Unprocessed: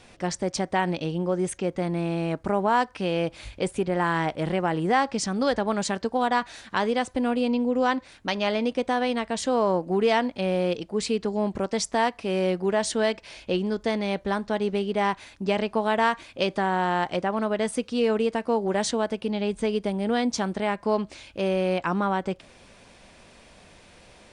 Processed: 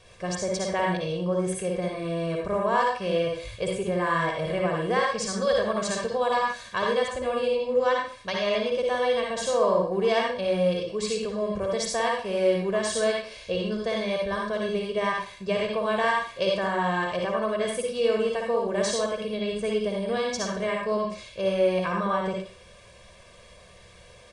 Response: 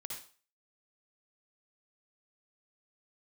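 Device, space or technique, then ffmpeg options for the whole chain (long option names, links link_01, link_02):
microphone above a desk: -filter_complex "[0:a]aecho=1:1:1.8:0.9[link_01];[1:a]atrim=start_sample=2205[link_02];[link_01][link_02]afir=irnorm=-1:irlink=0"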